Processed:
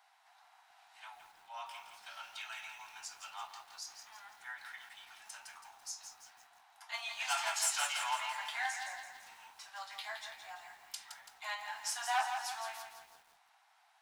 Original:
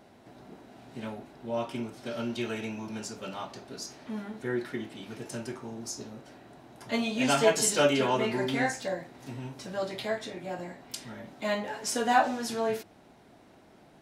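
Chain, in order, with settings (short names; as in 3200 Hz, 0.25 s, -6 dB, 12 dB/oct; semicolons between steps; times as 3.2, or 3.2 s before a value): overloaded stage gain 20 dB; steep high-pass 750 Hz 72 dB/oct; lo-fi delay 0.167 s, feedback 55%, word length 9-bit, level -7 dB; gain -5.5 dB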